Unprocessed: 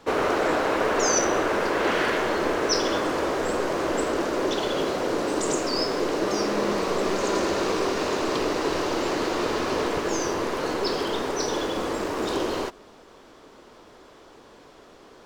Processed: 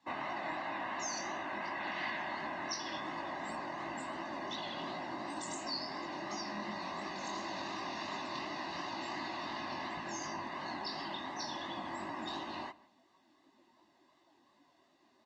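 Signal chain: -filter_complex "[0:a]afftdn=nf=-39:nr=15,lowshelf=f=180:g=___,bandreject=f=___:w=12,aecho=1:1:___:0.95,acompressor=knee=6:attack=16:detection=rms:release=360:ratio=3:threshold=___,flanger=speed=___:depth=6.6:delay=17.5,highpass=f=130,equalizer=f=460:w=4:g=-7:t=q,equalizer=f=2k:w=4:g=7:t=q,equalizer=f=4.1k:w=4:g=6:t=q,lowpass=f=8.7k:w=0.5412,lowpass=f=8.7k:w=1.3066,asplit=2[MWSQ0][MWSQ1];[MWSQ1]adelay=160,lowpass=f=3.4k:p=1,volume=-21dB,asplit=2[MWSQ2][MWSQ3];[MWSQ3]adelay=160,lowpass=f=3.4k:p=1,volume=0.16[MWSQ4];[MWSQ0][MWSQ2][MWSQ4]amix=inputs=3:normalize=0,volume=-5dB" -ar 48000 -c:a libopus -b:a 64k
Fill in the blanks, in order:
-2.5, 1.8k, 1.1, -31dB, 2.8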